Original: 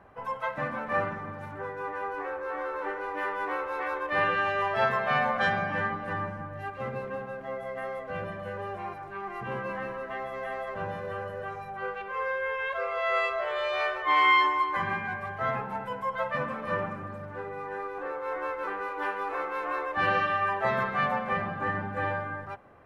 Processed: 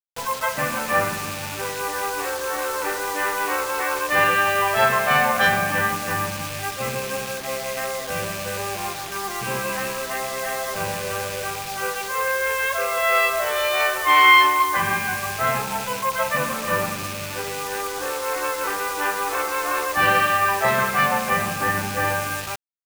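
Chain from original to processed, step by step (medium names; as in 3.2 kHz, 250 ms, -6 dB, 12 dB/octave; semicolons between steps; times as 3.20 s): rattle on loud lows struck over -46 dBFS, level -35 dBFS; hum 60 Hz, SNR 32 dB; bit crusher 7-bit; treble shelf 2.4 kHz +8 dB; trim +6 dB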